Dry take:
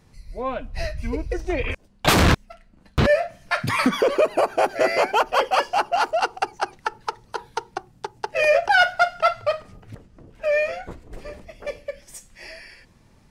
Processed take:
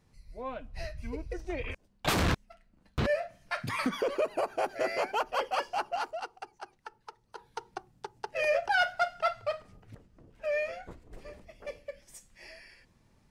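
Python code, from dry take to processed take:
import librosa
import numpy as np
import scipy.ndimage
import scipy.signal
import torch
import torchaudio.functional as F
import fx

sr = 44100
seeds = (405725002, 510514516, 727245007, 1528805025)

y = fx.gain(x, sr, db=fx.line((5.92, -11.0), (6.36, -19.5), (7.2, -19.5), (7.67, -10.0)))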